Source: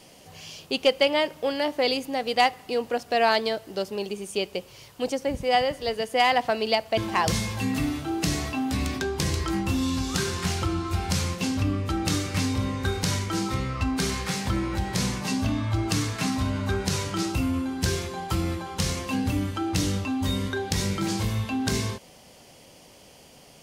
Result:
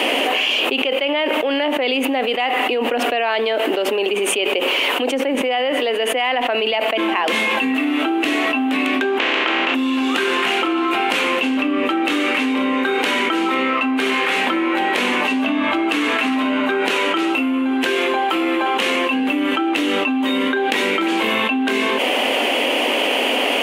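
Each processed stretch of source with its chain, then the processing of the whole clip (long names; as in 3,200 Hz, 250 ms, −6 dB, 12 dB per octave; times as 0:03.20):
0:09.17–0:09.74: compressing power law on the bin magnitudes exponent 0.4 + Bessel low-pass filter 3,800 Hz, order 6
whole clip: elliptic high-pass filter 250 Hz, stop band 40 dB; high shelf with overshoot 3,800 Hz −11 dB, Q 3; envelope flattener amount 100%; level −4 dB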